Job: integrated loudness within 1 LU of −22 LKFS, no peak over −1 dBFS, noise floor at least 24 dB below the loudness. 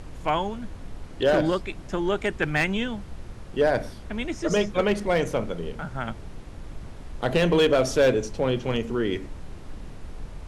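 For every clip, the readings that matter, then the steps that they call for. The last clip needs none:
share of clipped samples 0.4%; peaks flattened at −13.5 dBFS; background noise floor −41 dBFS; target noise floor −49 dBFS; integrated loudness −25.0 LKFS; sample peak −13.5 dBFS; target loudness −22.0 LKFS
→ clipped peaks rebuilt −13.5 dBFS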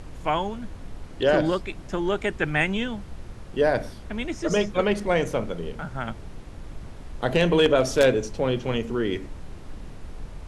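share of clipped samples 0.0%; background noise floor −41 dBFS; target noise floor −49 dBFS
→ noise reduction from a noise print 8 dB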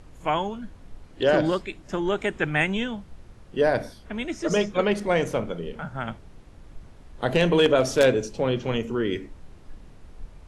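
background noise floor −48 dBFS; target noise floor −49 dBFS
→ noise reduction from a noise print 6 dB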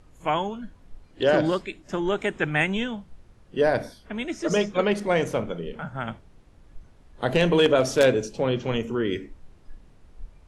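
background noise floor −54 dBFS; integrated loudness −25.0 LKFS; sample peak −5.0 dBFS; target loudness −22.0 LKFS
→ level +3 dB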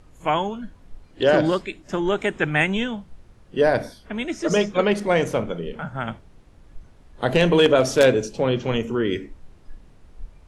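integrated loudness −22.0 LKFS; sample peak −2.0 dBFS; background noise floor −51 dBFS

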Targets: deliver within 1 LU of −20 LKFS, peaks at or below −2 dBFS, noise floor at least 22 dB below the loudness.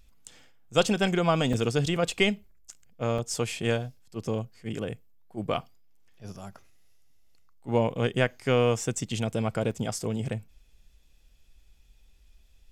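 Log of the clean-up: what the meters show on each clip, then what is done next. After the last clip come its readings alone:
number of dropouts 3; longest dropout 4.5 ms; integrated loudness −28.5 LKFS; sample peak −8.5 dBFS; target loudness −20.0 LKFS
→ repair the gap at 0:01.53/0:03.18/0:09.71, 4.5 ms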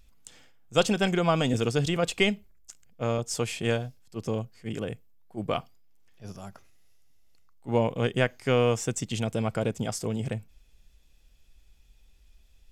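number of dropouts 0; integrated loudness −28.0 LKFS; sample peak −8.5 dBFS; target loudness −20.0 LKFS
→ level +8 dB
brickwall limiter −2 dBFS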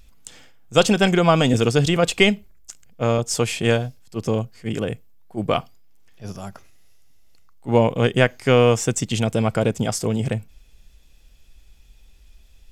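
integrated loudness −20.5 LKFS; sample peak −2.0 dBFS; background noise floor −51 dBFS

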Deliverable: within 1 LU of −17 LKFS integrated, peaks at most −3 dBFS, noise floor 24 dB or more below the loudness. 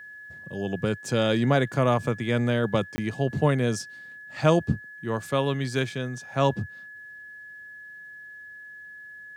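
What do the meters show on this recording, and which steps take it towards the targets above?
number of dropouts 1; longest dropout 20 ms; interfering tone 1,700 Hz; level of the tone −41 dBFS; integrated loudness −26.0 LKFS; sample peak −7.0 dBFS; target loudness −17.0 LKFS
→ repair the gap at 0:02.96, 20 ms
notch filter 1,700 Hz, Q 30
level +9 dB
brickwall limiter −3 dBFS

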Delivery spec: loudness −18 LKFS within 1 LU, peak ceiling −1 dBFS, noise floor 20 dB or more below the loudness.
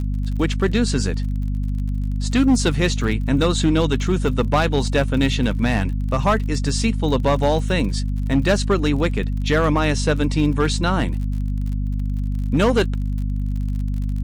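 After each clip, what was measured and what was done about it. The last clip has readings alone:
crackle rate 40 per second; mains hum 50 Hz; hum harmonics up to 250 Hz; level of the hum −20 dBFS; integrated loudness −20.5 LKFS; sample peak −8.0 dBFS; target loudness −18.0 LKFS
→ click removal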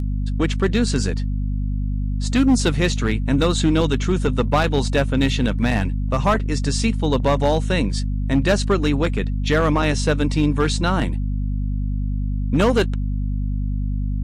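crackle rate 0.84 per second; mains hum 50 Hz; hum harmonics up to 250 Hz; level of the hum −20 dBFS
→ mains-hum notches 50/100/150/200/250 Hz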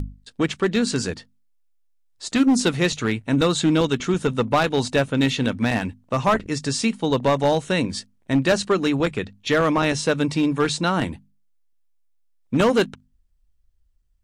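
mains hum none found; integrated loudness −21.5 LKFS; sample peak −6.0 dBFS; target loudness −18.0 LKFS
→ level +3.5 dB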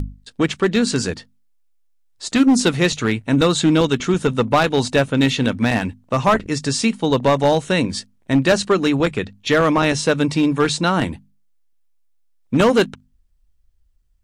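integrated loudness −18.0 LKFS; sample peak −2.5 dBFS; background noise floor −59 dBFS

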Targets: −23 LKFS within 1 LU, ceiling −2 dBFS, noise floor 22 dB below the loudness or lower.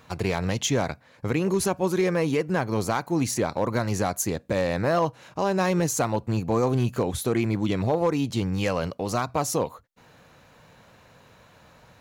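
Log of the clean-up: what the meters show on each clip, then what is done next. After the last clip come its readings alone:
share of clipped samples 0.4%; peaks flattened at −15.0 dBFS; integrated loudness −25.5 LKFS; sample peak −15.0 dBFS; target loudness −23.0 LKFS
→ clipped peaks rebuilt −15 dBFS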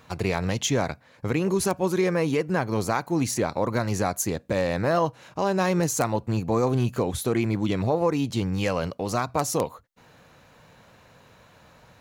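share of clipped samples 0.0%; integrated loudness −25.5 LKFS; sample peak −6.0 dBFS; target loudness −23.0 LKFS
→ level +2.5 dB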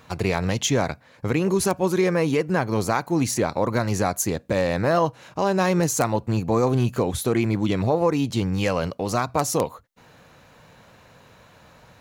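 integrated loudness −23.0 LKFS; sample peak −3.5 dBFS; background noise floor −53 dBFS

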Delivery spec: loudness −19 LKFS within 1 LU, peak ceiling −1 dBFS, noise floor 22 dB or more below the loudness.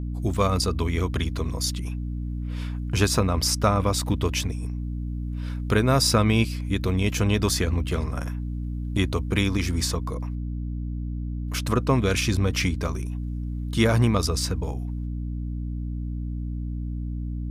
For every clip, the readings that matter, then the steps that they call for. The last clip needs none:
mains hum 60 Hz; hum harmonics up to 300 Hz; level of the hum −27 dBFS; integrated loudness −25.5 LKFS; sample peak −6.5 dBFS; target loudness −19.0 LKFS
→ mains-hum notches 60/120/180/240/300 Hz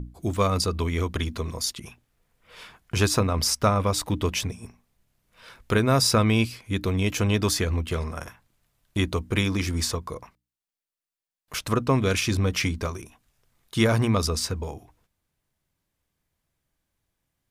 mains hum none found; integrated loudness −25.0 LKFS; sample peak −8.0 dBFS; target loudness −19.0 LKFS
→ level +6 dB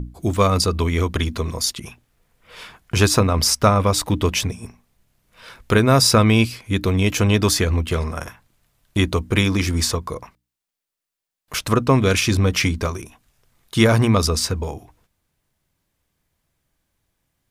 integrated loudness −19.0 LKFS; sample peak −2.0 dBFS; background noise floor −85 dBFS

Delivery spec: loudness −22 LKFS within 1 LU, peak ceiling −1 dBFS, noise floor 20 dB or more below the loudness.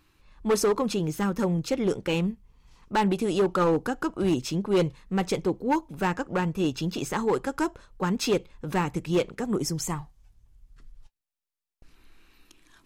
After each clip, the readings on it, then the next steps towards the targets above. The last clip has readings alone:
share of clipped samples 1.2%; peaks flattened at −17.5 dBFS; integrated loudness −27.0 LKFS; sample peak −17.5 dBFS; target loudness −22.0 LKFS
→ clipped peaks rebuilt −17.5 dBFS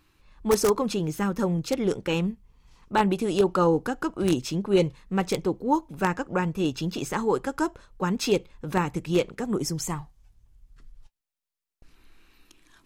share of clipped samples 0.0%; integrated loudness −26.5 LKFS; sample peak −8.5 dBFS; target loudness −22.0 LKFS
→ level +4.5 dB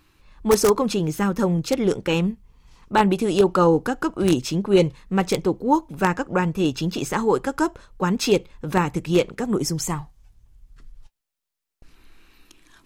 integrated loudness −22.0 LKFS; sample peak −4.0 dBFS; background noise floor −83 dBFS

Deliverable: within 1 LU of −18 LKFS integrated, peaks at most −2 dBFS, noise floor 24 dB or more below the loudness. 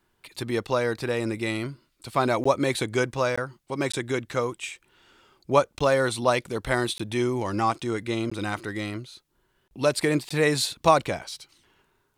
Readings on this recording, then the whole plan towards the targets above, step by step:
number of dropouts 7; longest dropout 15 ms; integrated loudness −26.0 LKFS; sample peak −5.5 dBFS; target loudness −18.0 LKFS
→ repair the gap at 0:02.44/0:03.36/0:03.92/0:05.79/0:06.98/0:08.30/0:10.29, 15 ms
level +8 dB
brickwall limiter −2 dBFS

